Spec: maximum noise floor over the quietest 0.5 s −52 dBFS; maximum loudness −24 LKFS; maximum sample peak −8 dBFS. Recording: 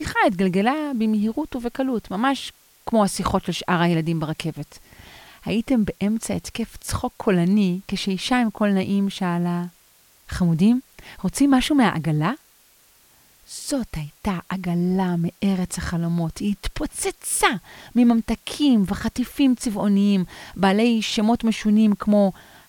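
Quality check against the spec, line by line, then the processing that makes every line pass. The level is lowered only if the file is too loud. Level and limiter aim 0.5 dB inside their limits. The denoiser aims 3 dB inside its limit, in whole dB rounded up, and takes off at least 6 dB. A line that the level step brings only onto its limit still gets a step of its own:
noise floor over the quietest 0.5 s −56 dBFS: in spec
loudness −22.0 LKFS: out of spec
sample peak −3.5 dBFS: out of spec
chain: level −2.5 dB
brickwall limiter −8.5 dBFS

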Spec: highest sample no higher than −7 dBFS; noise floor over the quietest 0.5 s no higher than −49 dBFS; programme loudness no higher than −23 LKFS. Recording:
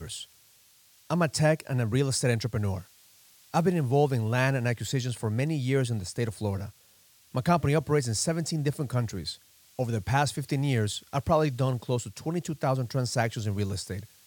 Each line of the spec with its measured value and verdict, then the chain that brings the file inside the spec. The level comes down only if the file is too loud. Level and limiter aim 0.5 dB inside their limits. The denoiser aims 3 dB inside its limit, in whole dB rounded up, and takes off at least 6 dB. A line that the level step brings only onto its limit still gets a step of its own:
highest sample −10.5 dBFS: in spec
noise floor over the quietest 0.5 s −60 dBFS: in spec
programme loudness −28.5 LKFS: in spec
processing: no processing needed

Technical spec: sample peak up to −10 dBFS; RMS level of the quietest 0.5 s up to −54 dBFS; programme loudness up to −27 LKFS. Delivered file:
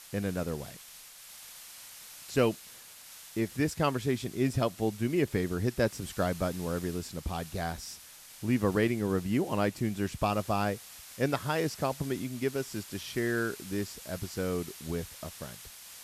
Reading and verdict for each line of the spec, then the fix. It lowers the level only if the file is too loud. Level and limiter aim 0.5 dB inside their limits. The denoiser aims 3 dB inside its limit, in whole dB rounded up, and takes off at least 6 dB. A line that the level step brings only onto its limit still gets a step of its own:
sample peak −13.0 dBFS: in spec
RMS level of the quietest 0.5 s −50 dBFS: out of spec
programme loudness −32.0 LKFS: in spec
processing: broadband denoise 7 dB, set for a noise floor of −50 dBFS

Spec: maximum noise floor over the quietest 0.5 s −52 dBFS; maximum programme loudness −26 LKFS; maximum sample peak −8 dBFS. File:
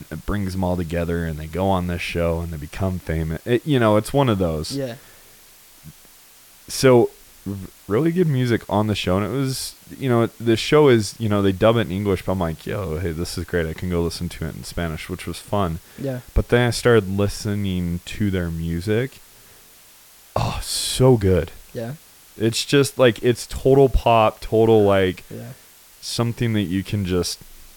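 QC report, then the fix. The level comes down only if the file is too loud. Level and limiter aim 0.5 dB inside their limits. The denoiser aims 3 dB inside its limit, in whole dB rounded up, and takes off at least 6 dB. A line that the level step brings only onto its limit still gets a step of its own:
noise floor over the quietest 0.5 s −48 dBFS: out of spec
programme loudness −20.5 LKFS: out of spec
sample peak −4.0 dBFS: out of spec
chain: level −6 dB

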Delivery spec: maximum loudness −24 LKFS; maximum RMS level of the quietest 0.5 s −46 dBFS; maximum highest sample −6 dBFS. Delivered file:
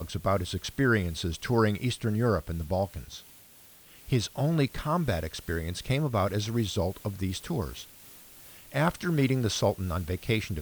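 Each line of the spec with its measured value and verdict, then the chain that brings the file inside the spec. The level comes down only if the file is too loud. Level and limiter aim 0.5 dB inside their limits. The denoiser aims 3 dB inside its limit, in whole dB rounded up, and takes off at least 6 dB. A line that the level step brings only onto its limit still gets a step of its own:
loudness −29.0 LKFS: in spec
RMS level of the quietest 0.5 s −54 dBFS: in spec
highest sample −11.5 dBFS: in spec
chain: no processing needed

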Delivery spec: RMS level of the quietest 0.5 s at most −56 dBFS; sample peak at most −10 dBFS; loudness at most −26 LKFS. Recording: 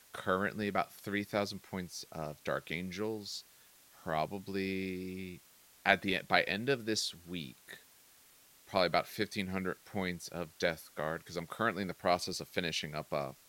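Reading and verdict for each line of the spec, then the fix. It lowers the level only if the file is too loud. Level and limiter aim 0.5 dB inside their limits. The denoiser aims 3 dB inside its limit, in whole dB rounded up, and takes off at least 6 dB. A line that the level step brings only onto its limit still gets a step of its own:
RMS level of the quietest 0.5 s −62 dBFS: in spec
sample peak −9.0 dBFS: out of spec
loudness −35.5 LKFS: in spec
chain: brickwall limiter −10.5 dBFS

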